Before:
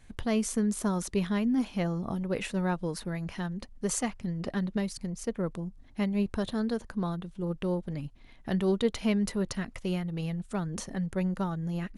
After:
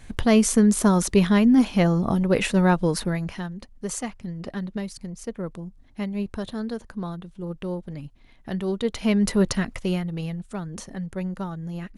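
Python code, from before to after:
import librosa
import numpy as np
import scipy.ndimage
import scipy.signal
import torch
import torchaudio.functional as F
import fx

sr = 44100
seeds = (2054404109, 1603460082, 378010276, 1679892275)

y = fx.gain(x, sr, db=fx.line((3.03, 10.5), (3.54, 0.0), (8.75, 0.0), (9.41, 10.5), (10.58, 0.0)))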